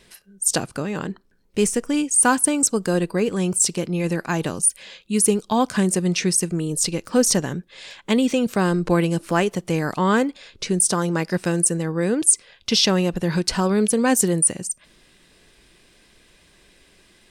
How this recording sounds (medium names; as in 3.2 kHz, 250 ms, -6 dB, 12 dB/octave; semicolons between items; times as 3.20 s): noise floor -56 dBFS; spectral tilt -3.5 dB/octave